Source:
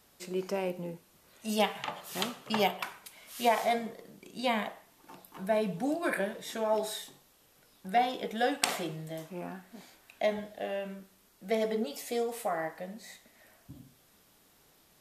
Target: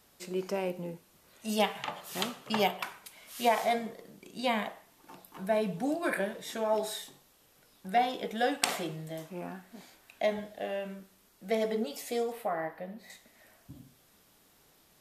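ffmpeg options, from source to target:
-filter_complex "[0:a]asettb=1/sr,asplit=3[a][b][c];[a]atrim=end=12.324[d];[b]atrim=start=12.32:end=13.1,asetpts=PTS-STARTPTS,afade=t=in:d=0.004:c=qsin,afade=t=out:st=0.776:d=0.004:c=qsin,equalizer=f=7.3k:w=0.8:g=-14.5[e];[c]atrim=start=13.096[f];[d][e]acrossfade=d=0.004:c1=hsin:c2=qsin[g];[g][f]acrossfade=d=0.004:c1=qsin:c2=hsin"

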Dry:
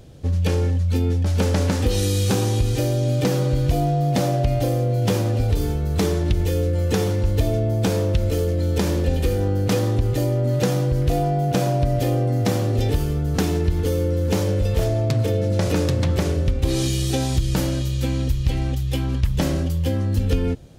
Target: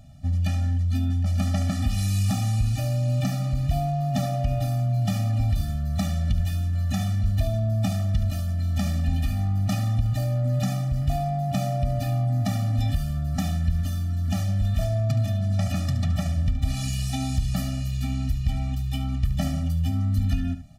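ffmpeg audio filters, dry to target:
-af "aecho=1:1:72:0.237,acontrast=44,afftfilt=real='re*eq(mod(floor(b*sr/1024/280),2),0)':imag='im*eq(mod(floor(b*sr/1024/280),2),0)':win_size=1024:overlap=0.75,volume=-8.5dB"

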